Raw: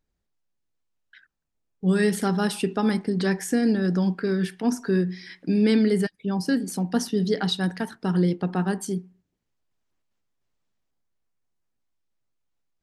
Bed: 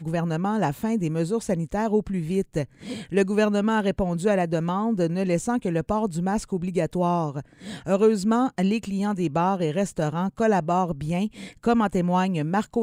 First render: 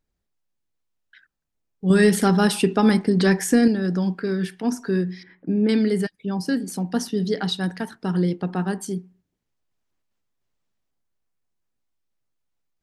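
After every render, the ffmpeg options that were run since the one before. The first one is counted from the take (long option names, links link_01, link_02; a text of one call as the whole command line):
ffmpeg -i in.wav -filter_complex "[0:a]asettb=1/sr,asplit=3[link_01][link_02][link_03];[link_01]atrim=end=1.904[link_04];[link_02]atrim=start=1.9:end=3.68,asetpts=PTS-STARTPTS,afade=type=in:duration=0.004:curve=qsin,afade=type=out:start_time=1.776:duration=0.004:curve=qsin,acontrast=53[link_05];[link_03]atrim=start=3.676[link_06];[link_04][link_05]acrossfade=duration=0.004:curve1=hsin:curve2=qsin[link_07];[link_07][link_06]acrossfade=duration=0.004:curve1=qsin:curve2=hsin,asettb=1/sr,asplit=3[link_08][link_09][link_10];[link_08]atrim=end=5.234[link_11];[link_09]atrim=start=5.23:end=5.69,asetpts=PTS-STARTPTS,afade=type=in:duration=0.004:curve=qsin,afade=type=out:start_time=0.456:duration=0.004:curve=qsin,lowpass=1200[link_12];[link_10]atrim=start=5.686[link_13];[link_11][link_12]acrossfade=duration=0.004:curve1=hsin:curve2=qsin[link_14];[link_14][link_13]acrossfade=duration=0.004:curve1=qsin:curve2=hsin" out.wav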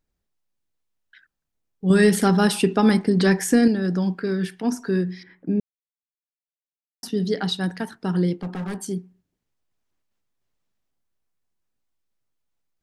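ffmpeg -i in.wav -filter_complex "[0:a]asettb=1/sr,asplit=3[link_01][link_02][link_03];[link_01]atrim=end=8.384[link_04];[link_02]atrim=start=8.38:end=8.81,asetpts=PTS-STARTPTS,afade=type=in:duration=0.004:curve=qsin,afade=type=out:start_time=0.426:duration=0.004:curve=qsin,asoftclip=type=hard:threshold=-26dB[link_05];[link_03]atrim=start=8.806[link_06];[link_04][link_05]acrossfade=duration=0.004:curve1=hsin:curve2=qsin[link_07];[link_07][link_06]acrossfade=duration=0.004:curve1=qsin:curve2=hsin,asplit=3[link_08][link_09][link_10];[link_08]atrim=end=5.6,asetpts=PTS-STARTPTS,afade=type=out:start_time=5.596:duration=0.004:curve=hsin[link_11];[link_09]atrim=start=5.6:end=7.03,asetpts=PTS-STARTPTS,volume=0[link_12];[link_10]atrim=start=7.03,asetpts=PTS-STARTPTS,afade=type=in:duration=0.004:curve=hsin[link_13];[link_11][link_12][link_13]concat=n=3:v=0:a=1" out.wav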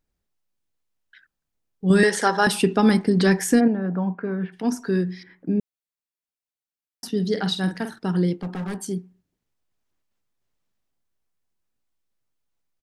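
ffmpeg -i in.wav -filter_complex "[0:a]asettb=1/sr,asplit=3[link_01][link_02][link_03];[link_01]atrim=end=2.034[link_04];[link_02]atrim=start=2.03:end=2.47,asetpts=PTS-STARTPTS,afade=type=in:duration=0.004:curve=qsin,afade=type=out:start_time=0.436:duration=0.004:curve=qsin,highpass=450,equalizer=frequency=520:width_type=q:width=4:gain=6,equalizer=frequency=920:width_type=q:width=4:gain=8,equalizer=frequency=1700:width_type=q:width=4:gain=9,equalizer=frequency=2500:width_type=q:width=4:gain=-3,equalizer=frequency=6000:width_type=q:width=4:gain=5,lowpass=frequency=9400:width=0.5412,lowpass=frequency=9400:width=1.3066[link_05];[link_03]atrim=start=2.466[link_06];[link_04][link_05]acrossfade=duration=0.004:curve1=hsin:curve2=qsin[link_07];[link_07][link_06]acrossfade=duration=0.004:curve1=qsin:curve2=hsin,asplit=3[link_08][link_09][link_10];[link_08]afade=type=out:start_time=3.59:duration=0.02[link_11];[link_09]highpass=160,equalizer=frequency=350:width_type=q:width=4:gain=-7,equalizer=frequency=690:width_type=q:width=4:gain=5,equalizer=frequency=980:width_type=q:width=4:gain=5,equalizer=frequency=1800:width_type=q:width=4:gain=-6,lowpass=frequency=2100:width=0.5412,lowpass=frequency=2100:width=1.3066,afade=type=in:start_time=3.59:duration=0.02,afade=type=out:start_time=4.52:duration=0.02[link_12];[link_10]afade=type=in:start_time=4.52:duration=0.02[link_13];[link_11][link_12][link_13]amix=inputs=3:normalize=0,asplit=3[link_14][link_15][link_16];[link_14]afade=type=out:start_time=7.31:duration=0.02[link_17];[link_15]asplit=2[link_18][link_19];[link_19]adelay=48,volume=-8.5dB[link_20];[link_18][link_20]amix=inputs=2:normalize=0,afade=type=in:start_time=7.31:duration=0.02,afade=type=out:start_time=7.98:duration=0.02[link_21];[link_16]afade=type=in:start_time=7.98:duration=0.02[link_22];[link_17][link_21][link_22]amix=inputs=3:normalize=0" out.wav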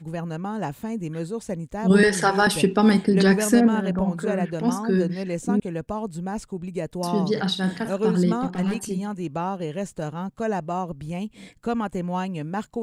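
ffmpeg -i in.wav -i bed.wav -filter_complex "[1:a]volume=-5dB[link_01];[0:a][link_01]amix=inputs=2:normalize=0" out.wav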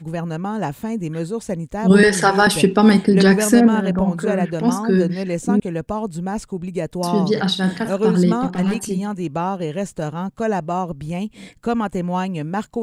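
ffmpeg -i in.wav -af "volume=5dB,alimiter=limit=-2dB:level=0:latency=1" out.wav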